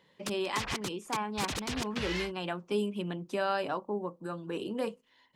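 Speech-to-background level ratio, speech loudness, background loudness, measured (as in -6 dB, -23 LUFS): 3.0 dB, -35.0 LUFS, -38.0 LUFS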